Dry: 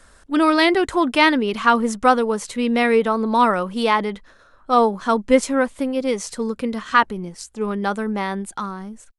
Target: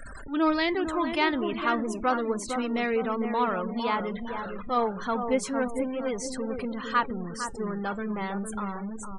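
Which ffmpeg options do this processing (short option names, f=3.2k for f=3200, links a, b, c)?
-filter_complex "[0:a]aeval=exprs='val(0)+0.5*0.075*sgn(val(0))':c=same,asplit=2[a][b];[b]adelay=456,lowpass=f=1.5k:p=1,volume=-6dB,asplit=2[c][d];[d]adelay=456,lowpass=f=1.5k:p=1,volume=0.44,asplit=2[e][f];[f]adelay=456,lowpass=f=1.5k:p=1,volume=0.44,asplit=2[g][h];[h]adelay=456,lowpass=f=1.5k:p=1,volume=0.44,asplit=2[i][j];[j]adelay=456,lowpass=f=1.5k:p=1,volume=0.44[k];[c][e][g][i][k]amix=inputs=5:normalize=0[l];[a][l]amix=inputs=2:normalize=0,afftfilt=real='re*gte(hypot(re,im),0.0501)':imag='im*gte(hypot(re,im),0.0501)':win_size=1024:overlap=0.75,flanger=delay=2.5:depth=3.3:regen=86:speed=0.31:shape=sinusoidal,volume=-7dB"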